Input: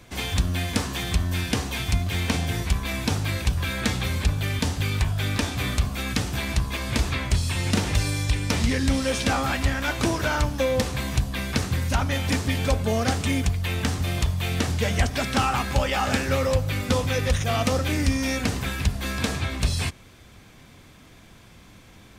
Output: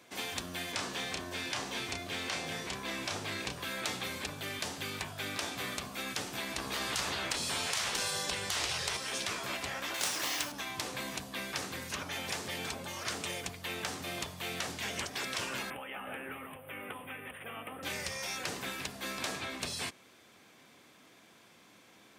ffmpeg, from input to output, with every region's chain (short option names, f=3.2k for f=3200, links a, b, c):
-filter_complex "[0:a]asettb=1/sr,asplit=3[a][b][c];[a]atrim=end=0.724[d];[b]atrim=start=0.72:end=3.6,asetpts=PTS-STARTPTS,afade=t=in:d=0.004:c=qsin,afade=t=out:st=2.876:d=0.004:c=qsin,acrossover=split=8600[e][f];[f]acompressor=threshold=-53dB:ratio=4:attack=1:release=60[g];[e][g]amix=inputs=2:normalize=0,equalizer=f=440:w=2.1:g=4.5,asplit=2[h][i];[i]adelay=31,volume=-6dB[j];[h][j]amix=inputs=2:normalize=0,atrim=end_sample=127008[k];[c]atrim=start=3.596[l];[d][k]acrossfade=d=0.004:c1=hsin:c2=qsin[m];[m][l]acrossfade=d=0.004:c1=qsin:c2=hsin,asettb=1/sr,asplit=3[n][o][p];[n]atrim=end=6.584[q];[o]atrim=start=6.58:end=8.97,asetpts=PTS-STARTPTS,afade=t=in:d=0.004:c=qsin,afade=t=out:st=2.386:d=0.004:c=qsin,highshelf=f=8.1k:g=-5,acontrast=89[r];[p]atrim=start=8.966[s];[q][r]acrossfade=d=0.004:c1=hsin:c2=qsin[t];[t][s]acrossfade=d=0.004:c1=qsin:c2=hsin,asettb=1/sr,asplit=3[u][v][w];[u]atrim=end=9.944[x];[v]atrim=start=9.94:end=10.52,asetpts=PTS-STARTPTS,afade=t=in:d=0.004:c=qsin,afade=t=out:st=0.576:d=0.004:c=qsin,tiltshelf=f=690:g=-7.5,bandreject=f=470:w=7.1,acrusher=bits=3:mode=log:mix=0:aa=0.000001[y];[w]atrim=start=10.516[z];[x][y]acrossfade=d=0.004:c1=hsin:c2=qsin[aa];[aa][z]acrossfade=d=0.004:c1=qsin:c2=hsin,asettb=1/sr,asplit=3[ab][ac][ad];[ab]atrim=end=15.704[ae];[ac]atrim=start=15.7:end=17.83,asetpts=PTS-STARTPTS,afade=t=in:d=0.004:c=qsin,afade=t=out:st=2.126:d=0.004:c=qsin,asuperstop=centerf=5500:order=12:qfactor=0.92,acrossover=split=320|3000[af][ag][ah];[af]acompressor=threshold=-34dB:ratio=4[ai];[ag]acompressor=threshold=-34dB:ratio=4[aj];[ah]acompressor=threshold=-48dB:ratio=4[ak];[ai][aj][ak]amix=inputs=3:normalize=0[al];[ad]atrim=start=17.826[am];[ae][al]acrossfade=d=0.004:c1=hsin:c2=qsin[an];[an][am]acrossfade=d=0.004:c1=qsin:c2=hsin,highpass=280,afftfilt=real='re*lt(hypot(re,im),0.141)':imag='im*lt(hypot(re,im),0.141)':win_size=1024:overlap=0.75,volume=-6.5dB"